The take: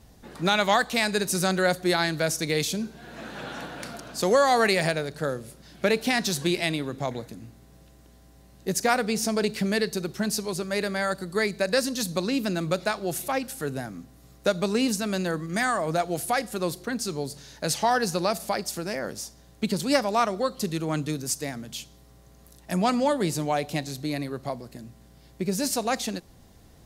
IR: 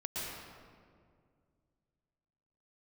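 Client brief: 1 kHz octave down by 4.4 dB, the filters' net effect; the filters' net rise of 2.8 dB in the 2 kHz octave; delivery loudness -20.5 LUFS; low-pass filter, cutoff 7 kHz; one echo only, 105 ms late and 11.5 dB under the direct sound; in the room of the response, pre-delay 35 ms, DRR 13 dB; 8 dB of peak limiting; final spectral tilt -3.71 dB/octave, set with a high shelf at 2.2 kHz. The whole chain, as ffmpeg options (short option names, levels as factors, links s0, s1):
-filter_complex "[0:a]lowpass=7000,equalizer=f=1000:t=o:g=-8.5,equalizer=f=2000:t=o:g=4.5,highshelf=f=2200:g=3.5,alimiter=limit=0.178:level=0:latency=1,aecho=1:1:105:0.266,asplit=2[s0][s1];[1:a]atrim=start_sample=2205,adelay=35[s2];[s1][s2]afir=irnorm=-1:irlink=0,volume=0.158[s3];[s0][s3]amix=inputs=2:normalize=0,volume=2.37"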